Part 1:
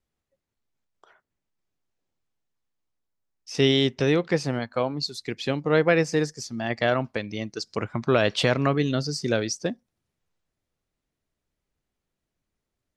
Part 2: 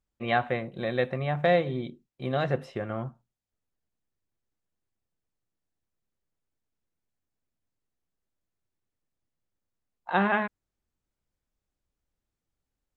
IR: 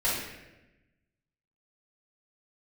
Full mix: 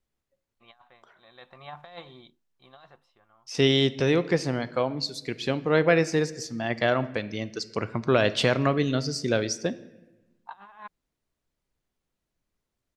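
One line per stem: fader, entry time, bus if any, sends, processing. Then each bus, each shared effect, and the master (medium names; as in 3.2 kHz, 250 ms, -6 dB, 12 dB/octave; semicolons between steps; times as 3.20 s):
-1.0 dB, 0.00 s, send -24 dB, none
-12.0 dB, 0.40 s, no send, graphic EQ 125/250/500/1000/2000/4000 Hz -11/-7/-10/+12/-6/+8 dB; compressor with a negative ratio -29 dBFS, ratio -0.5; auto duck -21 dB, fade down 1.30 s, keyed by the first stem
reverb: on, RT60 1.0 s, pre-delay 3 ms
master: none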